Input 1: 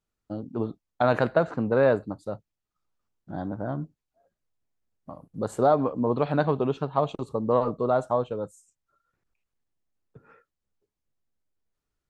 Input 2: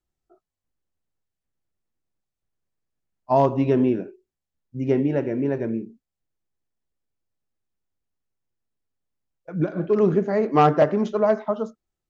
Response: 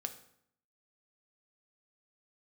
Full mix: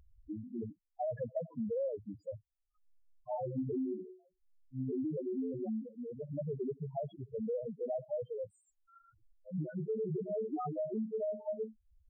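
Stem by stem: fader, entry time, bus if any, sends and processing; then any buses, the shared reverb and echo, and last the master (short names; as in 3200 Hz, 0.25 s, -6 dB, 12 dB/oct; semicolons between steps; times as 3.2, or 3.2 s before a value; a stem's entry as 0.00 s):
-6.0 dB, 0.00 s, no send, upward compressor, threshold -25 dBFS; auto duck -11 dB, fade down 0.65 s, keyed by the second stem
-7.0 dB, 0.00 s, send -19.5 dB, frequency quantiser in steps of 3 st; limiter -15 dBFS, peak gain reduction 10.5 dB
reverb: on, RT60 0.70 s, pre-delay 3 ms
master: bell 73 Hz +4 dB 1.6 oct; loudest bins only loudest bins 2; compressor, threshold -33 dBFS, peak gain reduction 8 dB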